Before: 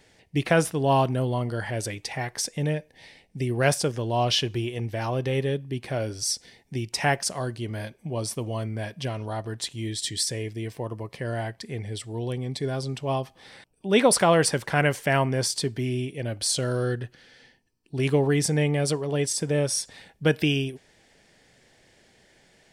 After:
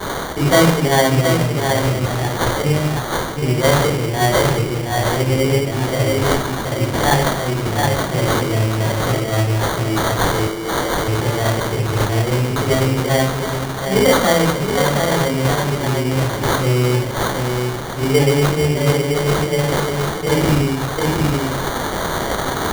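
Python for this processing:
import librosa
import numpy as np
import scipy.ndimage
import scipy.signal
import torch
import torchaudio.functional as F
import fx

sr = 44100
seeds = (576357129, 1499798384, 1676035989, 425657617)

p1 = x + 0.5 * 10.0 ** (-22.5 / 20.0) * np.diff(np.sign(x), prepend=np.sign(x[:1]))
p2 = p1 + fx.echo_single(p1, sr, ms=720, db=-4.0, dry=0)
p3 = fx.room_shoebox(p2, sr, seeds[0], volume_m3=70.0, walls='mixed', distance_m=3.7)
p4 = fx.rider(p3, sr, range_db=10, speed_s=2.0)
p5 = fx.highpass(p4, sr, hz=310.0, slope=12, at=(10.47, 11.08))
p6 = fx.sample_hold(p5, sr, seeds[1], rate_hz=2600.0, jitter_pct=0)
y = p6 * librosa.db_to_amplitude(-8.0)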